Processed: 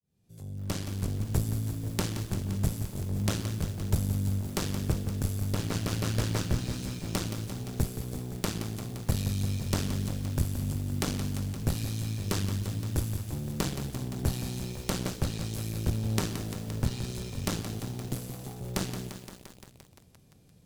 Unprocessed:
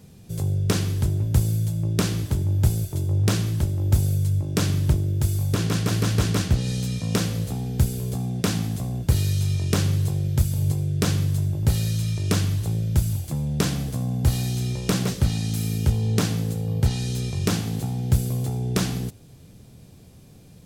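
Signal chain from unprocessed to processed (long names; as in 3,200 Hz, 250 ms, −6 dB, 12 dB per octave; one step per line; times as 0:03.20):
fade in at the beginning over 0.94 s
0:18.08–0:18.61: high-pass filter 140 Hz 24 dB per octave
harmonic generator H 3 −14 dB, 6 −28 dB, 8 −19 dB, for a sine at −1.5 dBFS
feedback echo at a low word length 173 ms, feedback 80%, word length 7 bits, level −9.5 dB
level −3 dB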